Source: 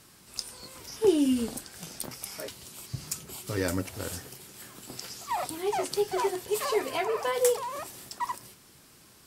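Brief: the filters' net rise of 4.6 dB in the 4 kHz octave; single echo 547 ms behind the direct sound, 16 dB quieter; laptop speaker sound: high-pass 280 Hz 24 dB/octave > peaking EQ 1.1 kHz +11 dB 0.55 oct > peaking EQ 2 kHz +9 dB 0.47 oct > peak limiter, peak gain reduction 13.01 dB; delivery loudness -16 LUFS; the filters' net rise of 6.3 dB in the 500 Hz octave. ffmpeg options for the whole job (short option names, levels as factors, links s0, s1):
-af "highpass=f=280:w=0.5412,highpass=f=280:w=1.3066,equalizer=f=500:t=o:g=7,equalizer=f=1100:t=o:w=0.55:g=11,equalizer=f=2000:t=o:w=0.47:g=9,equalizer=f=4000:t=o:g=5,aecho=1:1:547:0.158,volume=4.73,alimiter=limit=0.562:level=0:latency=1"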